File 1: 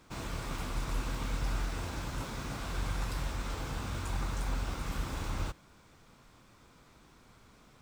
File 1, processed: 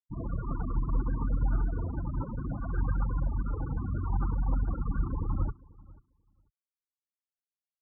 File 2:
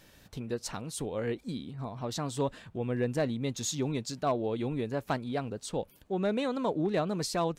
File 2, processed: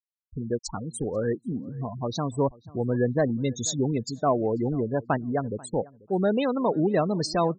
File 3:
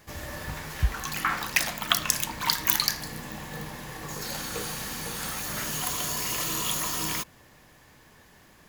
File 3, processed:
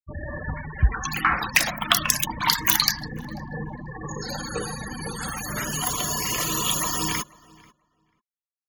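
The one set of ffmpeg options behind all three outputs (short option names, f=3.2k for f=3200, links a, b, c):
-filter_complex "[0:a]afftfilt=real='re*gte(hypot(re,im),0.0282)':imag='im*gte(hypot(re,im),0.0282)':win_size=1024:overlap=0.75,acontrast=88,asplit=2[a][b];[b]adelay=489,lowpass=f=2.4k:p=1,volume=-22.5dB,asplit=2[c][d];[d]adelay=489,lowpass=f=2.4k:p=1,volume=0.15[e];[c][e]amix=inputs=2:normalize=0[f];[a][f]amix=inputs=2:normalize=0,volume=-1dB"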